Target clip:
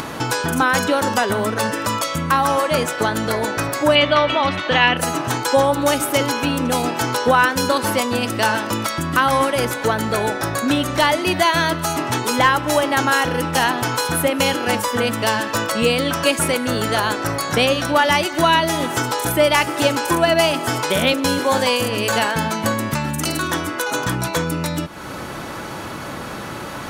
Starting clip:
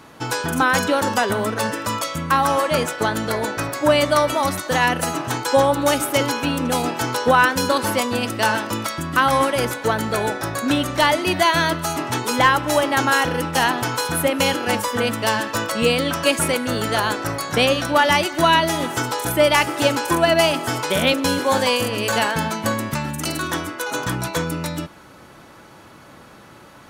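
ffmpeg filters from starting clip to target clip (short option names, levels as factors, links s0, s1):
-filter_complex "[0:a]asplit=2[s0][s1];[s1]acompressor=threshold=0.0398:ratio=6,volume=1.26[s2];[s0][s2]amix=inputs=2:normalize=0,asettb=1/sr,asplit=3[s3][s4][s5];[s3]atrim=end=3.954[s6];[s4]atrim=start=3.95:end=4.97,asetpts=PTS-STARTPTS,afade=t=in:d=0.004:c=qsin,afade=t=out:st=1.016:d=0.004:c=qsin,lowpass=f=3000:t=q:w=2.7[s7];[s5]atrim=start=4.966[s8];[s6][s7]acrossfade=d=0.004:c1=hsin:c2=qsin[s9];[s9][s8]acrossfade=d=0.004:c1=qsin:c2=hsin,acompressor=mode=upward:threshold=0.126:ratio=2.5,volume=0.841"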